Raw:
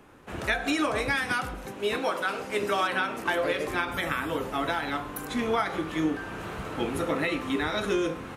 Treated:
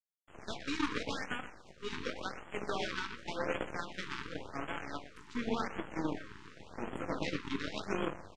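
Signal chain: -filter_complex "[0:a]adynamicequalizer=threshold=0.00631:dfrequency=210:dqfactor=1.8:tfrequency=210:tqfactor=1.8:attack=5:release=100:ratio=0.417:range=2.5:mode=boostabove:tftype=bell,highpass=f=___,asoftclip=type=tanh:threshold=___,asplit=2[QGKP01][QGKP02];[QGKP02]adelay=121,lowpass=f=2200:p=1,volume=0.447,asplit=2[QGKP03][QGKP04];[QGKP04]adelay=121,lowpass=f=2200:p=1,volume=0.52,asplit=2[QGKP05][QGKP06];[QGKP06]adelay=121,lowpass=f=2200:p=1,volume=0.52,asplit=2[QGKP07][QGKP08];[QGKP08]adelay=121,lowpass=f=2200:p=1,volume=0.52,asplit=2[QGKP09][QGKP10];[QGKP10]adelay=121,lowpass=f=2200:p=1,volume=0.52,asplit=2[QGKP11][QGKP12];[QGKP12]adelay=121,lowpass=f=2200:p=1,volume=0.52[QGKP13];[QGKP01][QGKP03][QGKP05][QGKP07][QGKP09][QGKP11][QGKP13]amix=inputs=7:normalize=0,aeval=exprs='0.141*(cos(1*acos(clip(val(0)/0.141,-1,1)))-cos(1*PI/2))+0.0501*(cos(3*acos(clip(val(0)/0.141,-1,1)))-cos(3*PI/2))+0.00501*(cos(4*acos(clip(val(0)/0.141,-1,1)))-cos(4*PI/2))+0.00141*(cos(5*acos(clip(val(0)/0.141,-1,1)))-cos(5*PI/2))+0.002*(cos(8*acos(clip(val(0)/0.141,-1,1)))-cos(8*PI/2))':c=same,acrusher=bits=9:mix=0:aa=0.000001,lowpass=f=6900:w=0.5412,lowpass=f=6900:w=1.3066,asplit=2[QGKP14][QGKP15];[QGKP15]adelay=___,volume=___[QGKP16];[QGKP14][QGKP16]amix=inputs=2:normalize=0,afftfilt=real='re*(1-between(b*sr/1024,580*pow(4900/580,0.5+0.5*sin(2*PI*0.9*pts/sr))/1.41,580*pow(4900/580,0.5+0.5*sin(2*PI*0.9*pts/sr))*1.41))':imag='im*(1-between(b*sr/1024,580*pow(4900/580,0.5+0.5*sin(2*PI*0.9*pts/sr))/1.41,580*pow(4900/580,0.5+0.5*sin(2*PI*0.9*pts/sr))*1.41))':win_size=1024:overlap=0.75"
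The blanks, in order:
67, 0.0944, 21, 0.224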